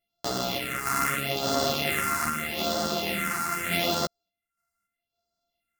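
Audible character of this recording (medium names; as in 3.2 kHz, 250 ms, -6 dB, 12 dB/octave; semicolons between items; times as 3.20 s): a buzz of ramps at a fixed pitch in blocks of 64 samples; phasing stages 4, 0.8 Hz, lowest notch 540–2300 Hz; random-step tremolo; a shimmering, thickened sound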